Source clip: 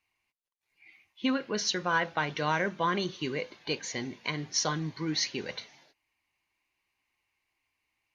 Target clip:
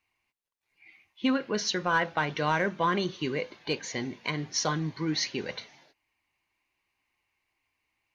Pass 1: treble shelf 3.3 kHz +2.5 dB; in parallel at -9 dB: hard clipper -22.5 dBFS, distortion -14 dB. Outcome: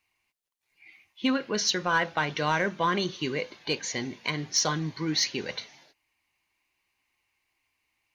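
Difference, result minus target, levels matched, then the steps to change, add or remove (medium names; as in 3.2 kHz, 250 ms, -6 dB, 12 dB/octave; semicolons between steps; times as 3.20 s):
8 kHz band +3.5 dB
change: treble shelf 3.3 kHz -4.5 dB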